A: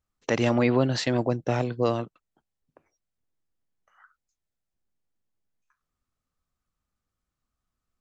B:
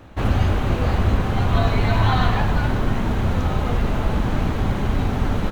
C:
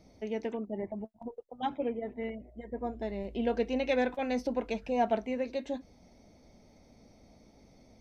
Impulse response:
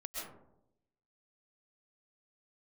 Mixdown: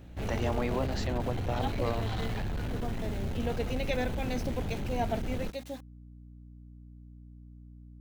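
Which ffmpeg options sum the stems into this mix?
-filter_complex "[0:a]equalizer=f=860:w=1:g=8.5,volume=-13dB[a];[1:a]equalizer=f=1.1k:w=1.6:g=-10,asoftclip=type=tanh:threshold=-21dB,volume=-8.5dB[b];[2:a]highshelf=f=2.5k:g=7.5,aeval=exprs='val(0)*gte(abs(val(0)),0.00708)':c=same,volume=-5dB[c];[a][b][c]amix=inputs=3:normalize=0,highshelf=f=6.7k:g=5,aeval=exprs='val(0)+0.00398*(sin(2*PI*60*n/s)+sin(2*PI*2*60*n/s)/2+sin(2*PI*3*60*n/s)/3+sin(2*PI*4*60*n/s)/4+sin(2*PI*5*60*n/s)/5)':c=same"

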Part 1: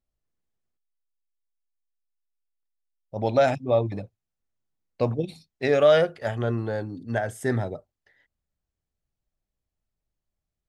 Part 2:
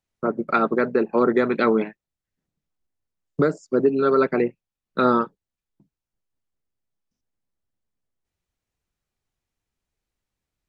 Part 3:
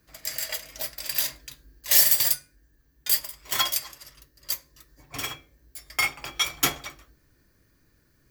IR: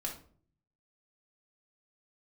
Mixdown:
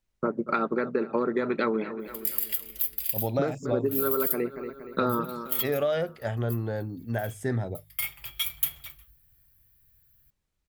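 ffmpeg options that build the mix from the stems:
-filter_complex "[0:a]lowshelf=f=180:g=7,bandreject=f=50.47:t=h:w=4,bandreject=f=100.94:t=h:w=4,bandreject=f=151.41:t=h:w=4,volume=-4dB,asplit=2[a][b];[1:a]bandreject=f=710:w=12,volume=0dB,asplit=2[c][d];[d]volume=-17dB[e];[2:a]firequalizer=gain_entry='entry(100,0);entry(250,-18);entry(3100,-1);entry(5700,-14);entry(12000,11)':delay=0.05:min_phase=1,adelay=2000,volume=-1.5dB[f];[b]apad=whole_len=458745[g];[f][g]sidechaincompress=threshold=-38dB:ratio=10:attack=6.7:release=419[h];[e]aecho=0:1:235|470|705|940|1175|1410|1645:1|0.48|0.23|0.111|0.0531|0.0255|0.0122[i];[a][c][h][i]amix=inputs=4:normalize=0,acompressor=threshold=-23dB:ratio=6"

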